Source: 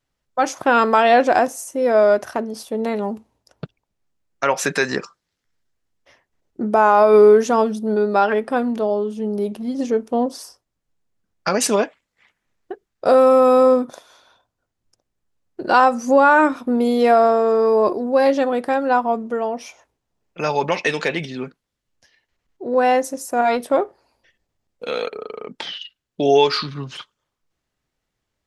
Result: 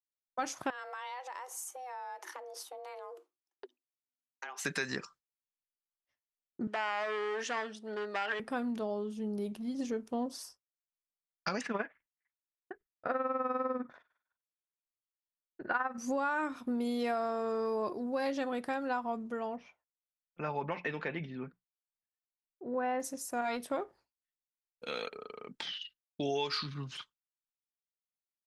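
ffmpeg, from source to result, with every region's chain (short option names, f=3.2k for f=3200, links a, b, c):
-filter_complex "[0:a]asettb=1/sr,asplit=3[a][b][c];[a]atrim=end=0.704[d];[b]atrim=start=0.7:end=4.65,asetpts=PTS-STARTPTS,afade=t=in:d=0.004:c=qsin,afade=t=out:st=3.946:d=0.004:c=qsin,equalizer=f=120:w=1.2:g=9.5,acompressor=threshold=-27dB:ratio=10:attack=3.2:release=140:knee=1:detection=peak,afreqshift=250[e];[c]atrim=start=4.646[f];[d][e]acrossfade=d=0.004:c1=hsin:c2=qsin[g];[g][f]acrossfade=d=0.004:c1=qsin:c2=hsin,asettb=1/sr,asplit=3[h][i][j];[h]atrim=end=6.674[k];[i]atrim=start=6.67:end=8.4,asetpts=PTS-STARTPTS,afade=t=in:d=0.004:c=qsin,afade=t=out:st=1.726:d=0.004:c=qsin,acompressor=threshold=-12dB:ratio=4:attack=3.2:release=140:knee=1:detection=peak,aeval=exprs='clip(val(0),-1,0.158)':c=same,highpass=450,equalizer=f=1.8k:t=q:w=4:g=9,equalizer=f=3k:t=q:w=4:g=7,equalizer=f=6.4k:t=q:w=4:g=-3,lowpass=f=8k:w=0.5412,lowpass=f=8k:w=1.3066[l];[j]atrim=start=8.396[m];[k][l]acrossfade=d=0.004:c1=hsin:c2=qsin[n];[n][m]acrossfade=d=0.004:c1=qsin:c2=hsin,asettb=1/sr,asplit=3[o][p][q];[o]atrim=end=11.614[r];[p]atrim=start=11.61:end=15.98,asetpts=PTS-STARTPTS,afade=t=in:d=0.004:c=qsin,afade=t=out:st=4.366:d=0.004:c=qsin,lowpass=f=1.8k:t=q:w=3,tremolo=f=20:d=0.71[s];[q]atrim=start=15.976[t];[r][s]acrossfade=d=0.004:c1=hsin:c2=qsin[u];[u][t]acrossfade=d=0.004:c1=qsin:c2=hsin,asettb=1/sr,asplit=3[v][w][x];[v]atrim=end=19.564[y];[w]atrim=start=19.56:end=23,asetpts=PTS-STARTPTS,afade=t=in:d=0.004:c=qsin,afade=t=out:st=3.436:d=0.004:c=qsin,lowpass=1.7k,bandreject=f=60:t=h:w=6,bandreject=f=120:t=h:w=6,bandreject=f=180:t=h:w=6[z];[x]atrim=start=22.996[aa];[y][z]acrossfade=d=0.004:c1=hsin:c2=qsin[ab];[ab][aa]acrossfade=d=0.004:c1=qsin:c2=hsin,agate=range=-33dB:threshold=-38dB:ratio=3:detection=peak,equalizer=f=520:t=o:w=1.8:g=-7,acompressor=threshold=-21dB:ratio=4,volume=-9dB"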